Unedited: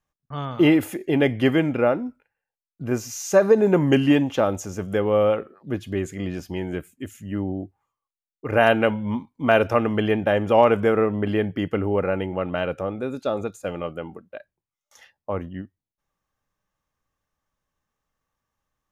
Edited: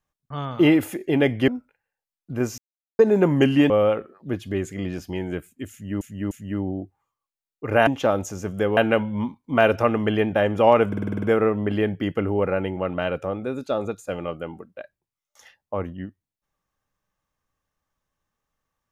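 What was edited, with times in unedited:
1.48–1.99 s: delete
3.09–3.50 s: mute
4.21–5.11 s: move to 8.68 s
7.12–7.42 s: loop, 3 plays
10.79 s: stutter 0.05 s, 8 plays

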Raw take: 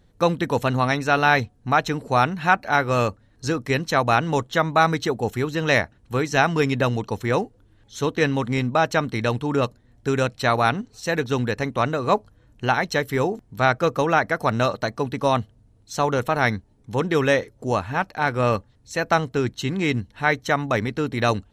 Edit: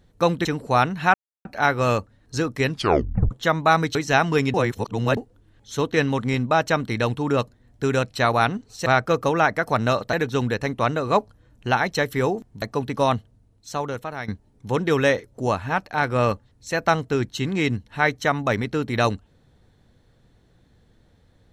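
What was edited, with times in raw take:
0.45–1.86 s: delete
2.55 s: insert silence 0.31 s
3.78 s: tape stop 0.63 s
5.05–6.19 s: delete
6.78–7.41 s: reverse
13.59–14.86 s: move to 11.10 s
15.37–16.52 s: fade out, to -14.5 dB

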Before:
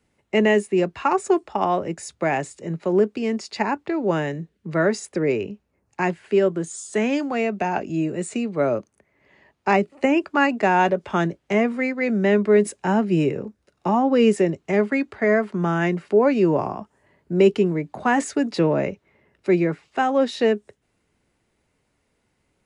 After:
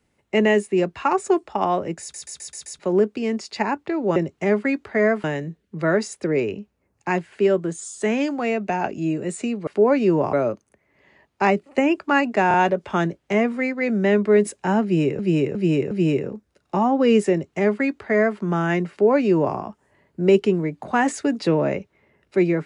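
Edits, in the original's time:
2.01 s: stutter in place 0.13 s, 6 plays
10.74 s: stutter 0.03 s, 3 plays
13.03–13.39 s: loop, 4 plays
14.43–15.51 s: copy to 4.16 s
16.02–16.68 s: copy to 8.59 s

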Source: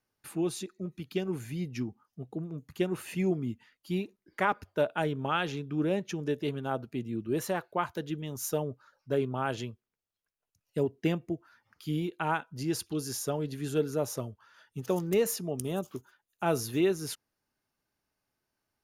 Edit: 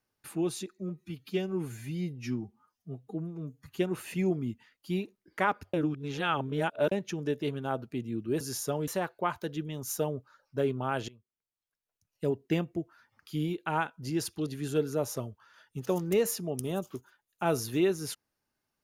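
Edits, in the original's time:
0.79–2.78 s: stretch 1.5×
4.74–5.92 s: reverse
9.62–11.30 s: fade in equal-power, from -21 dB
13.00–13.47 s: move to 7.41 s

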